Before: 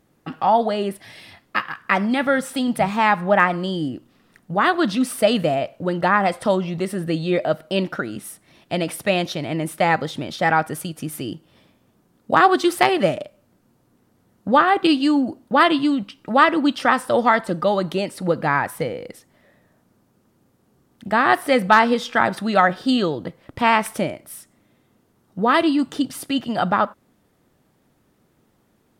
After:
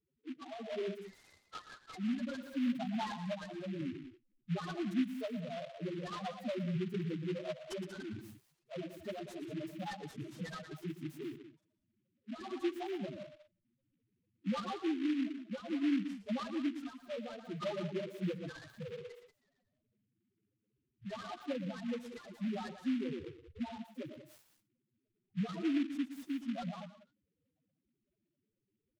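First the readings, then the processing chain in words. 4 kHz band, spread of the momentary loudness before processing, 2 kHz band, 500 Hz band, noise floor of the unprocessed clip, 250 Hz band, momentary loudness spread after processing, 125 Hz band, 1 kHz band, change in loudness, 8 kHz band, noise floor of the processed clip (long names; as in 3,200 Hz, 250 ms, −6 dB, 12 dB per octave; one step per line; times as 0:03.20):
−21.5 dB, 13 LU, −27.5 dB, −21.0 dB, −63 dBFS, −15.0 dB, 14 LU, −14.5 dB, −28.5 dB, −20.0 dB, below −20 dB, −85 dBFS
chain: spectral magnitudes quantised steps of 30 dB
noise reduction from a noise print of the clip's start 7 dB
downward compressor 10 to 1, threshold −26 dBFS, peak gain reduction 17.5 dB
spectral peaks only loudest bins 1
loudspeakers that aren't time-aligned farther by 40 metres −12 dB, 64 metres −12 dB
rotating-speaker cabinet horn 0.6 Hz
short delay modulated by noise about 2,200 Hz, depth 0.067 ms
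level +2.5 dB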